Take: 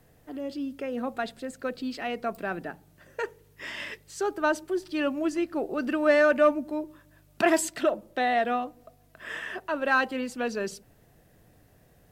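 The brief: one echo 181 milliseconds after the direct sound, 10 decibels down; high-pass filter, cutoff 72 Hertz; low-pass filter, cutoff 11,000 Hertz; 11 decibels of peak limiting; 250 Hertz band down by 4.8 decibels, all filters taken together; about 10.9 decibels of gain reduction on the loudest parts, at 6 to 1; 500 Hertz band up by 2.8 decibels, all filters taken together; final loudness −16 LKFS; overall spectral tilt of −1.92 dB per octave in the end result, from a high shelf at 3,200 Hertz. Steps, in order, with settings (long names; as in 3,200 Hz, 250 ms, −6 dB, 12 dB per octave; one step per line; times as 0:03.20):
high-pass filter 72 Hz
low-pass filter 11,000 Hz
parametric band 250 Hz −9 dB
parametric band 500 Hz +5 dB
high-shelf EQ 3,200 Hz +9 dB
downward compressor 6 to 1, threshold −26 dBFS
brickwall limiter −23.5 dBFS
single-tap delay 181 ms −10 dB
level +18 dB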